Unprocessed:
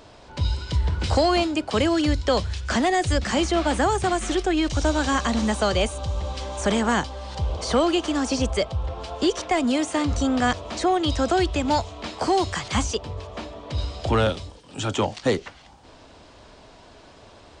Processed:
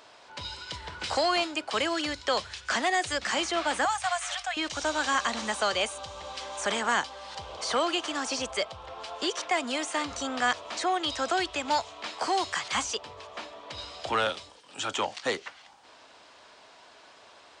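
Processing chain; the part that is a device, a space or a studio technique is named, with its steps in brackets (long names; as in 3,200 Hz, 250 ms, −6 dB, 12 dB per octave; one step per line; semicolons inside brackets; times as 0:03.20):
filter by subtraction (in parallel: low-pass filter 1,400 Hz 12 dB per octave + polarity inversion)
0:03.85–0:04.57: on the sum: elliptic band-stop filter 110–620 Hz, stop band 40 dB
level −2.5 dB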